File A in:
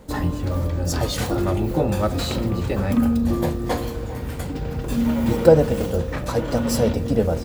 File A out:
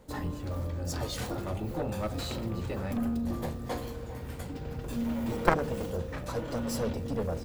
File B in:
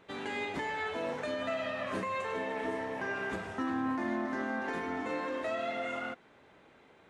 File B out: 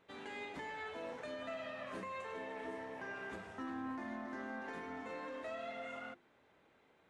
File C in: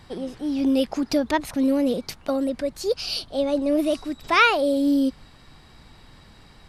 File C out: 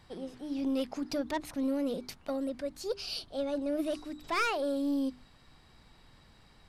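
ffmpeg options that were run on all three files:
-af "aeval=exprs='clip(val(0),-1,0.188)':c=same,aeval=exprs='0.891*(cos(1*acos(clip(val(0)/0.891,-1,1)))-cos(1*PI/2))+0.224*(cos(2*acos(clip(val(0)/0.891,-1,1)))-cos(2*PI/2))+0.398*(cos(3*acos(clip(val(0)/0.891,-1,1)))-cos(3*PI/2))+0.0562*(cos(4*acos(clip(val(0)/0.891,-1,1)))-cos(4*PI/2))+0.0112*(cos(6*acos(clip(val(0)/0.891,-1,1)))-cos(6*PI/2))':c=same,bandreject=f=50:t=h:w=6,bandreject=f=100:t=h:w=6,bandreject=f=150:t=h:w=6,bandreject=f=200:t=h:w=6,bandreject=f=250:t=h:w=6,bandreject=f=300:t=h:w=6,bandreject=f=350:t=h:w=6,bandreject=f=400:t=h:w=6"

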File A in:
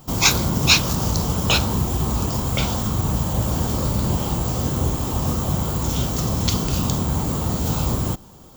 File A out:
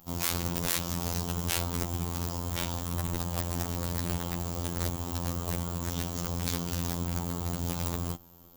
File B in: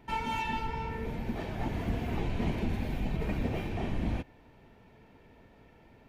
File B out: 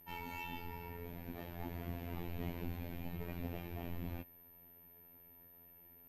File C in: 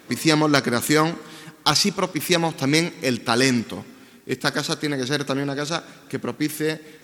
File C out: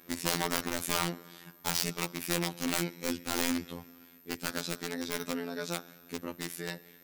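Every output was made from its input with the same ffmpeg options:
-af "aeval=exprs='(mod(4.22*val(0)+1,2)-1)/4.22':c=same,afftfilt=real='hypot(re,im)*cos(PI*b)':imag='0':win_size=2048:overlap=0.75,aeval=exprs='val(0)+0.00282*sin(2*PI*13000*n/s)':c=same,volume=-7.5dB"

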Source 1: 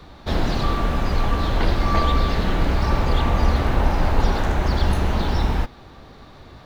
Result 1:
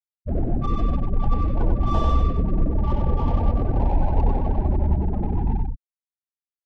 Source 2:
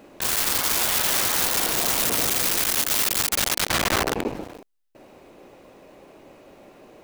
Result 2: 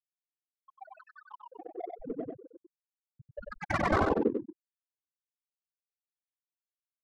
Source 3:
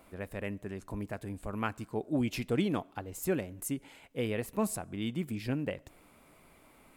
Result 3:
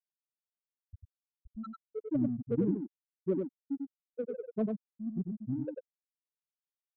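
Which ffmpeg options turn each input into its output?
-filter_complex "[0:a]lowpass=4k,afftfilt=real='re*gte(hypot(re,im),0.178)':imag='im*gte(hypot(re,im),0.178)':win_size=1024:overlap=0.75,asplit=2[a][b];[b]alimiter=limit=-18.5dB:level=0:latency=1,volume=-1dB[c];[a][c]amix=inputs=2:normalize=0,adynamicsmooth=sensitivity=2:basefreq=1k,aecho=1:1:95:0.596,volume=-5dB"

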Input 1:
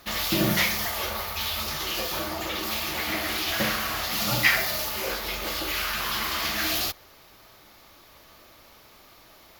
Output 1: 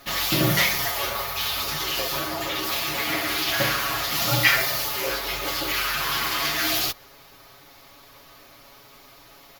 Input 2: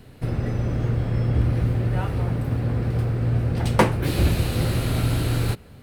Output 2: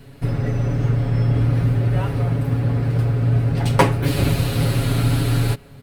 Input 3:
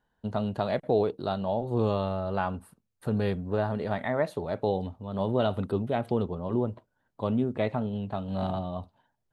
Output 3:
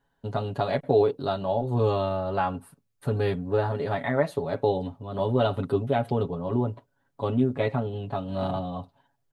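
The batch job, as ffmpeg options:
-af "aecho=1:1:7.2:0.78,volume=1dB"

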